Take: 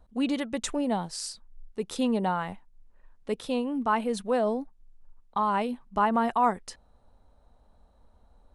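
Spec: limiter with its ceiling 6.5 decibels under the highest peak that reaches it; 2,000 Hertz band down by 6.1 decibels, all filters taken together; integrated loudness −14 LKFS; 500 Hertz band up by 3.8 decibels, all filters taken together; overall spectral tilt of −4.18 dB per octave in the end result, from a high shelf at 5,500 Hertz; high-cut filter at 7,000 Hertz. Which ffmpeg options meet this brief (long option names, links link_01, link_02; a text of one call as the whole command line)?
ffmpeg -i in.wav -af "lowpass=7000,equalizer=frequency=500:width_type=o:gain=5,equalizer=frequency=2000:width_type=o:gain=-8.5,highshelf=frequency=5500:gain=-7,volume=15.5dB,alimiter=limit=-3dB:level=0:latency=1" out.wav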